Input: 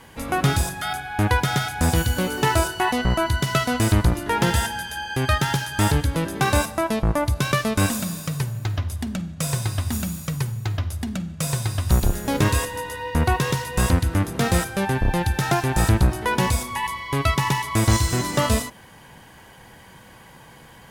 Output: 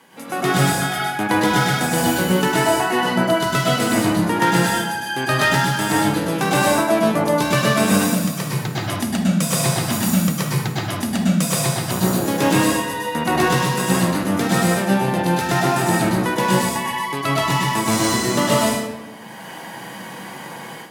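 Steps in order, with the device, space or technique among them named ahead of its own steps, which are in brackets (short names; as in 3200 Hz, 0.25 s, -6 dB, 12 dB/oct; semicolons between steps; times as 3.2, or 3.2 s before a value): far laptop microphone (reverb RT60 1.0 s, pre-delay 99 ms, DRR -4.5 dB; HPF 170 Hz 24 dB/oct; AGC); gain -4 dB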